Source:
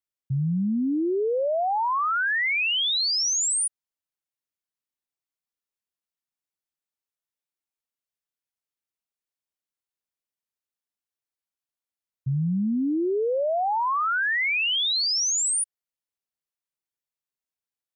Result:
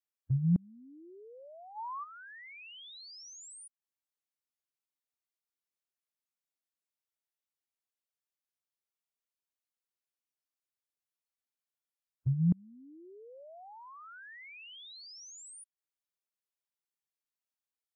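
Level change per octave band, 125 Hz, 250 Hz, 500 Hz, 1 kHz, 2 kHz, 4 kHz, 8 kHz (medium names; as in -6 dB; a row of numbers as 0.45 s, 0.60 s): -3.5 dB, -10.0 dB, -27.0 dB, -20.5 dB, -26.0 dB, -26.0 dB, -26.0 dB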